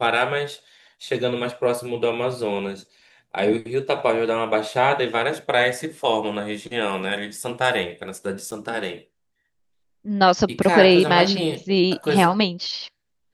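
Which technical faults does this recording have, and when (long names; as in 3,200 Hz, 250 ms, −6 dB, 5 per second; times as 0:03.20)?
0:08.51–0:08.52: drop-out 7.4 ms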